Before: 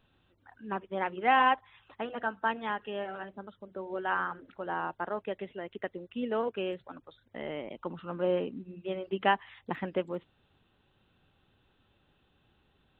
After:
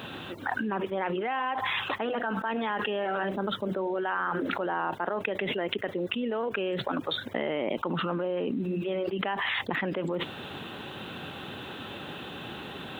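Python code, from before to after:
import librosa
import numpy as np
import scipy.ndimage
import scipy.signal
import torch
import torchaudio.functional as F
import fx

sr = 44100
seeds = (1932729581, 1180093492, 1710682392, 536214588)

y = scipy.signal.sosfilt(scipy.signal.butter(2, 170.0, 'highpass', fs=sr, output='sos'), x)
y = fx.env_flatten(y, sr, amount_pct=100)
y = F.gain(torch.from_numpy(y), -8.5).numpy()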